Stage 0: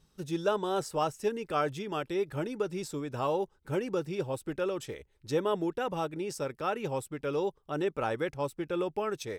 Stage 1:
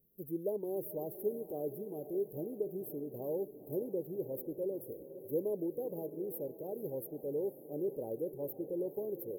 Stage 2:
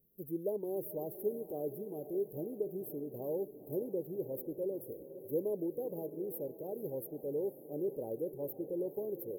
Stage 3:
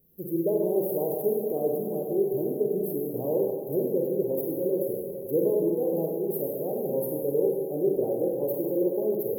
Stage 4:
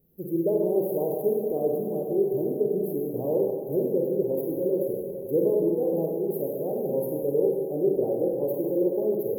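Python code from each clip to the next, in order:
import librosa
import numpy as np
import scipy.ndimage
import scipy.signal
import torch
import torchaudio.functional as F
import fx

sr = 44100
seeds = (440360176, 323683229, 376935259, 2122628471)

y1 = scipy.signal.sosfilt(scipy.signal.cheby2(4, 50, [1200.0, 7600.0], 'bandstop', fs=sr, output='sos'), x)
y1 = fx.riaa(y1, sr, side='recording')
y1 = fx.echo_diffused(y1, sr, ms=503, feedback_pct=60, wet_db=-12.5)
y2 = y1
y3 = fx.rev_schroeder(y2, sr, rt60_s=1.6, comb_ms=33, drr_db=-1.0)
y3 = y3 * 10.0 ** (8.0 / 20.0)
y4 = fx.high_shelf(y3, sr, hz=2500.0, db=-7.0)
y4 = y4 * 10.0 ** (1.5 / 20.0)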